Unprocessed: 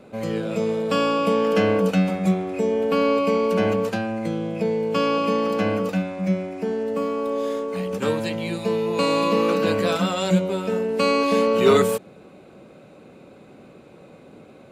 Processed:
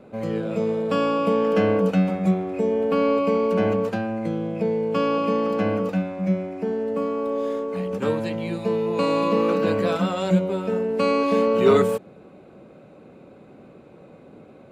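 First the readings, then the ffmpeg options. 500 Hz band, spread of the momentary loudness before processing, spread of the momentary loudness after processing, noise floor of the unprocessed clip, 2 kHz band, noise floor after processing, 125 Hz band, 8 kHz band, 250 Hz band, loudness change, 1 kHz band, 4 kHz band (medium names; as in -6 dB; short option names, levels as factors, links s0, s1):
-0.5 dB, 7 LU, 7 LU, -48 dBFS, -4.0 dB, -48 dBFS, 0.0 dB, no reading, 0.0 dB, -0.5 dB, -1.5 dB, -6.5 dB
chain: -af "highshelf=f=2600:g=-10"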